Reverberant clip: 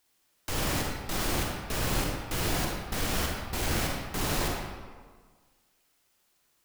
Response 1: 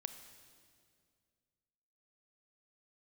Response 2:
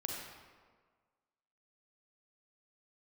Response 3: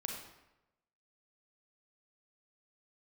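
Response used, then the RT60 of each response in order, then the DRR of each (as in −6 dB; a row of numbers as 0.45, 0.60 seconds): 2; 2.2, 1.6, 0.95 seconds; 9.0, −1.0, 0.5 decibels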